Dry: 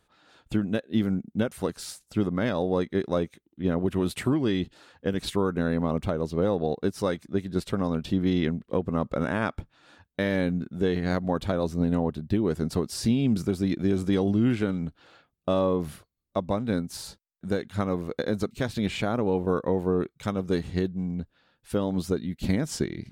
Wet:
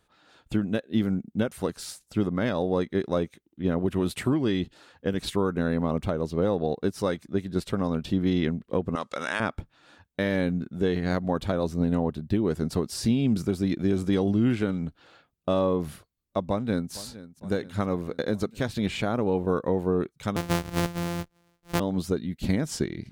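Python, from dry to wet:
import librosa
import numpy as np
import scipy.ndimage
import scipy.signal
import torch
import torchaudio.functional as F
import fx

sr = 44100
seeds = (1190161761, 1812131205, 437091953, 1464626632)

y = fx.weighting(x, sr, curve='ITU-R 468', at=(8.95, 9.4))
y = fx.echo_throw(y, sr, start_s=16.45, length_s=0.48, ms=460, feedback_pct=65, wet_db=-17.0)
y = fx.sample_sort(y, sr, block=256, at=(20.36, 21.8))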